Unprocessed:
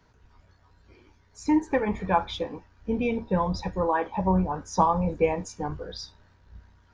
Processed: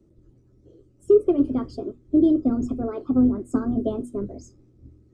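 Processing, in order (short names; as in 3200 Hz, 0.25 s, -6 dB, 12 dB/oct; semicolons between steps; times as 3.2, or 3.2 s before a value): notches 60/120/180 Hz; speed mistake 33 rpm record played at 45 rpm; EQ curve 170 Hz 0 dB, 340 Hz +11 dB, 780 Hz -16 dB, 2200 Hz -27 dB, 3800 Hz -17 dB, 8800 Hz -14 dB; gain +2.5 dB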